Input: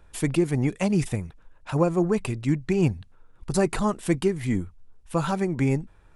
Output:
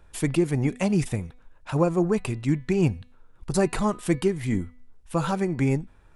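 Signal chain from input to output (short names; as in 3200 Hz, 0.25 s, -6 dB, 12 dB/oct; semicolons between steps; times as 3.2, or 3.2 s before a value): de-hum 248.6 Hz, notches 18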